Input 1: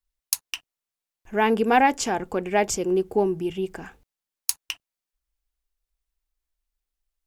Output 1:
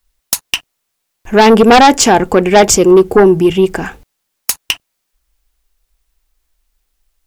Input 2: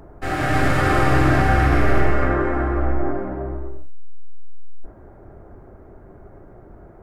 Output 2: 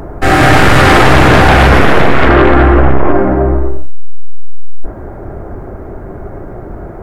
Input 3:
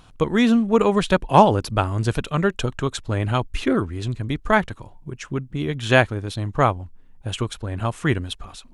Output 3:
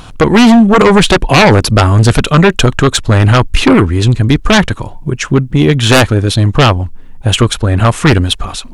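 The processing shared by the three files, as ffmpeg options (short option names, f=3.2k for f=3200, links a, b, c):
-filter_complex "[0:a]asplit=2[a][b];[b]alimiter=limit=-11dB:level=0:latency=1:release=62,volume=-1.5dB[c];[a][c]amix=inputs=2:normalize=0,aeval=exprs='1.19*sin(PI/2*3.98*val(0)/1.19)':c=same,volume=-3dB"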